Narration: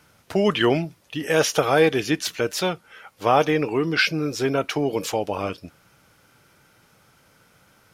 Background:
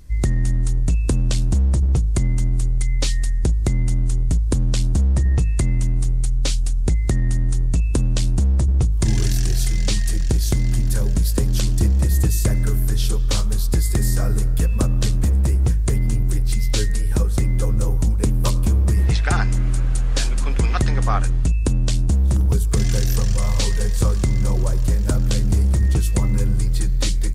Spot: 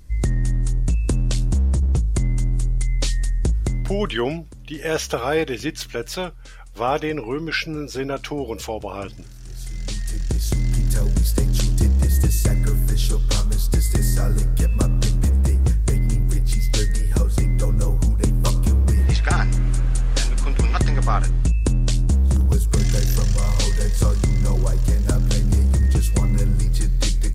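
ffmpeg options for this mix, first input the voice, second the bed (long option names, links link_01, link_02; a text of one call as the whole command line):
ffmpeg -i stem1.wav -i stem2.wav -filter_complex "[0:a]adelay=3550,volume=-3.5dB[link_01];[1:a]volume=21dB,afade=type=out:start_time=3.55:duration=0.68:silence=0.0891251,afade=type=in:start_time=9.38:duration=1.49:silence=0.0749894[link_02];[link_01][link_02]amix=inputs=2:normalize=0" out.wav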